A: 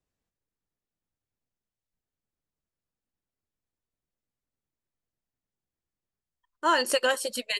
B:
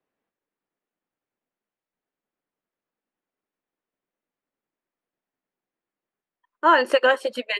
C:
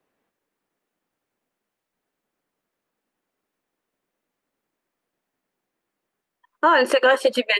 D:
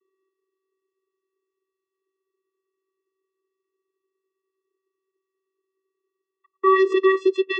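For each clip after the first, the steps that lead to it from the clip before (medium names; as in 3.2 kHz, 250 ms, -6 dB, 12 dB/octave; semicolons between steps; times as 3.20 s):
three-band isolator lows -23 dB, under 210 Hz, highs -23 dB, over 2.9 kHz; trim +7.5 dB
peak limiter -16.5 dBFS, peak gain reduction 10.5 dB; trim +8.5 dB
vocoder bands 16, square 382 Hz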